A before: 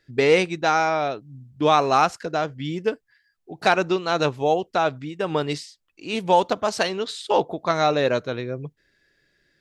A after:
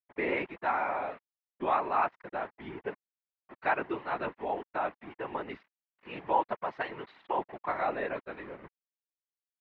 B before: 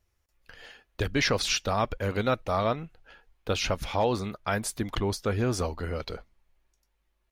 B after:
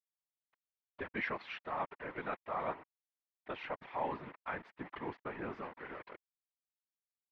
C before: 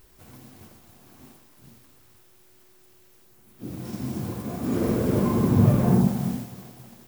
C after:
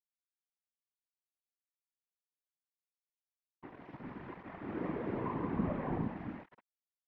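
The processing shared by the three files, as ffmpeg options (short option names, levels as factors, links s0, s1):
-af "aeval=exprs='val(0)*gte(abs(val(0)),0.0237)':c=same,highpass=240,equalizer=f=480:t=q:w=4:g=-5,equalizer=f=960:t=q:w=4:g=6,equalizer=f=1900:t=q:w=4:g=6,lowpass=f=2500:w=0.5412,lowpass=f=2500:w=1.3066,afftfilt=real='hypot(re,im)*cos(2*PI*random(0))':imag='hypot(re,im)*sin(2*PI*random(1))':win_size=512:overlap=0.75,volume=0.531"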